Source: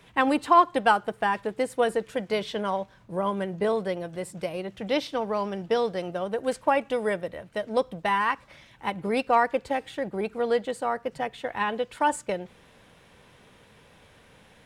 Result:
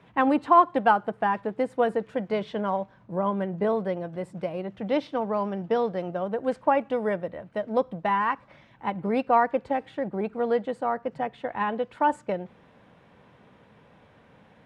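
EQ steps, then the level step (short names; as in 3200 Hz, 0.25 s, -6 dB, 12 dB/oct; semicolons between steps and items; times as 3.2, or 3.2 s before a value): band-pass 300 Hz, Q 0.51; low shelf 200 Hz -4 dB; bell 410 Hz -6.5 dB 1.2 oct; +7.0 dB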